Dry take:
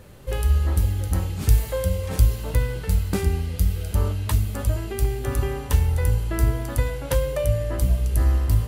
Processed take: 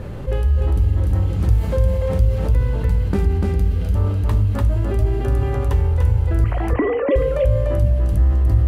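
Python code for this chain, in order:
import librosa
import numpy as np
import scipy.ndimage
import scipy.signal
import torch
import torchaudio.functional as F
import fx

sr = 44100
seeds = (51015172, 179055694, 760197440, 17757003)

y = fx.sine_speech(x, sr, at=(6.44, 7.16))
y = fx.lowpass(y, sr, hz=1500.0, slope=6)
y = fx.low_shelf(y, sr, hz=340.0, db=3.5)
y = y + 10.0 ** (-3.0 / 20.0) * np.pad(y, (int(294 * sr / 1000.0), 0))[:len(y)]
y = fx.rev_plate(y, sr, seeds[0], rt60_s=0.7, hf_ratio=0.45, predelay_ms=0, drr_db=12.5)
y = fx.env_flatten(y, sr, amount_pct=50)
y = y * 10.0 ** (-5.0 / 20.0)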